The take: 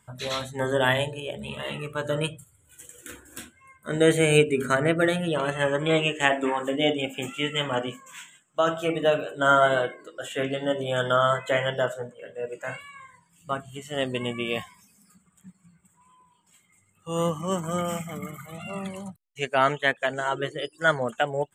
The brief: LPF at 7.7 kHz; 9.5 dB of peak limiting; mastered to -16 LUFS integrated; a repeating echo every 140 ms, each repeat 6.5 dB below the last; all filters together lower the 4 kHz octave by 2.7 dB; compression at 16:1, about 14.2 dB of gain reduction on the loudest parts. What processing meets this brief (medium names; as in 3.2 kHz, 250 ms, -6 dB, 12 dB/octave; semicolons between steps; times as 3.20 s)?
low-pass 7.7 kHz; peaking EQ 4 kHz -4 dB; compression 16:1, threshold -28 dBFS; peak limiter -24.5 dBFS; feedback delay 140 ms, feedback 47%, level -6.5 dB; trim +19.5 dB